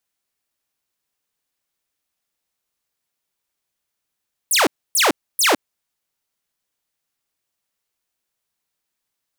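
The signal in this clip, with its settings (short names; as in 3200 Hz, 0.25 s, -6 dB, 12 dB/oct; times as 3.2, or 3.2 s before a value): burst of laser zaps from 12000 Hz, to 240 Hz, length 0.16 s saw, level -10 dB, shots 3, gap 0.28 s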